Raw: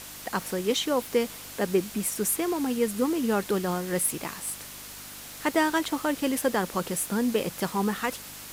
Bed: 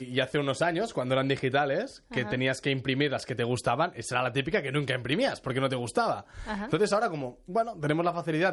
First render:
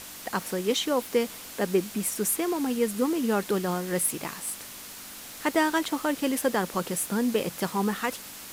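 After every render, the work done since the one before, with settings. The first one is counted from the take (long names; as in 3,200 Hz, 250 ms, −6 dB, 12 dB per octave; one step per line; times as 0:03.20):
hum removal 50 Hz, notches 3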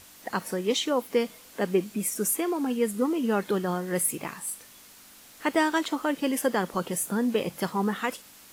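noise reduction from a noise print 9 dB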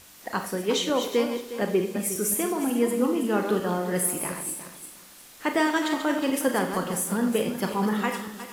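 feedback delay that plays each chunk backwards 180 ms, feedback 49%, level −7.5 dB
four-comb reverb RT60 0.49 s, combs from 26 ms, DRR 6.5 dB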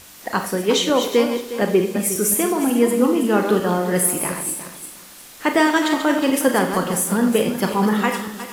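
level +7 dB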